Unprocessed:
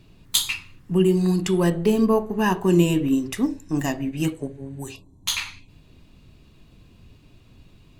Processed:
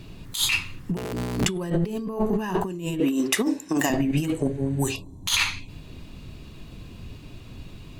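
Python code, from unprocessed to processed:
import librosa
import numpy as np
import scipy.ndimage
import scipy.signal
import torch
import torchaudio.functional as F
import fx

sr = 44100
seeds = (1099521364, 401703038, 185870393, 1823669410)

y = fx.cycle_switch(x, sr, every=3, mode='inverted', at=(0.96, 1.44), fade=0.02)
y = fx.highpass(y, sr, hz=330.0, slope=12, at=(3.0, 3.9))
y = fx.over_compress(y, sr, threshold_db=-29.0, ratio=-1.0)
y = y * 10.0 ** (3.5 / 20.0)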